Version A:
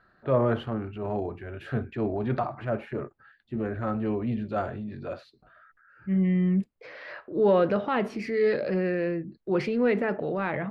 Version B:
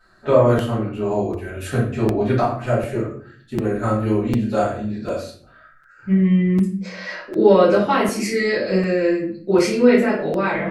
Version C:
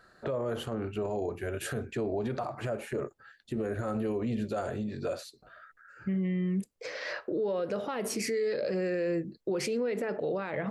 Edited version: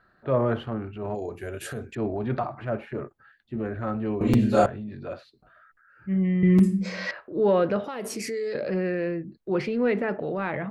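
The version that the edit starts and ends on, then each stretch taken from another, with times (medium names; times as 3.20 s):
A
1.15–1.95 s: from C
4.21–4.66 s: from B
6.43–7.11 s: from B
7.84–8.55 s: from C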